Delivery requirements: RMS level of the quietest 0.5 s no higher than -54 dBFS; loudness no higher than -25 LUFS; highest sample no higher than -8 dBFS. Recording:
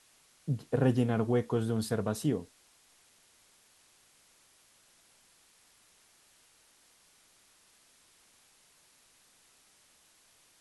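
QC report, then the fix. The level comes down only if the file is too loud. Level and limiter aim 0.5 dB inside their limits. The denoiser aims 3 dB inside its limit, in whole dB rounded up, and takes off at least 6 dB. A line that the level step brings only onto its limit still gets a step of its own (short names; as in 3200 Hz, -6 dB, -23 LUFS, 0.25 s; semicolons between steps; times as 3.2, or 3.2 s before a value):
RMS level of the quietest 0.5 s -65 dBFS: OK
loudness -31.0 LUFS: OK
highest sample -14.0 dBFS: OK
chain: none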